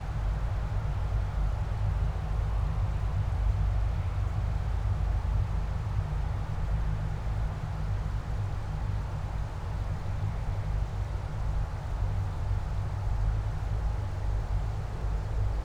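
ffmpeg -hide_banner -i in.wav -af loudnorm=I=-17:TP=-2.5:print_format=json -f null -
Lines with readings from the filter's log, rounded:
"input_i" : "-32.8",
"input_tp" : "-16.4",
"input_lra" : "2.9",
"input_thresh" : "-42.8",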